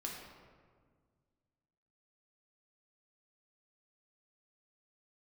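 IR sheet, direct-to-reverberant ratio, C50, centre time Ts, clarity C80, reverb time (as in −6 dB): −2.0 dB, 2.0 dB, 69 ms, 3.5 dB, 1.7 s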